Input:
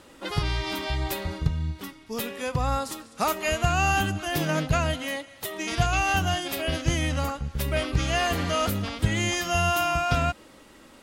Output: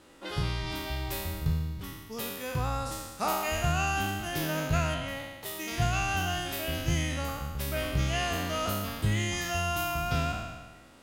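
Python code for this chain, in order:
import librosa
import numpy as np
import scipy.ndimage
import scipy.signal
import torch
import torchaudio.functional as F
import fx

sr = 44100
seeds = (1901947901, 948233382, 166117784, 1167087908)

y = fx.spec_trails(x, sr, decay_s=1.28)
y = fx.high_shelf(y, sr, hz=5200.0, db=-8.0, at=(4.94, 5.46))
y = y * 10.0 ** (-7.5 / 20.0)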